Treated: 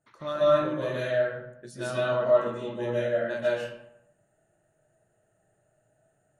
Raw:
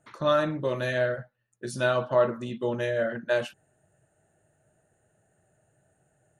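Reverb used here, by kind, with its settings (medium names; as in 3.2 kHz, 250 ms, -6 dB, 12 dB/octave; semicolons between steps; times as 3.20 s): algorithmic reverb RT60 0.8 s, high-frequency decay 0.6×, pre-delay 105 ms, DRR -8 dB; trim -10 dB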